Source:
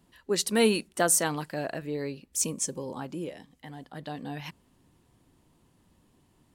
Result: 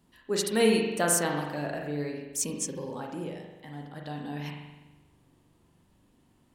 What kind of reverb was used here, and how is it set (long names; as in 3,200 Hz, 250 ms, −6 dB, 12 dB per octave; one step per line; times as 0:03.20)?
spring reverb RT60 1.1 s, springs 41 ms, chirp 35 ms, DRR 1 dB
level −2.5 dB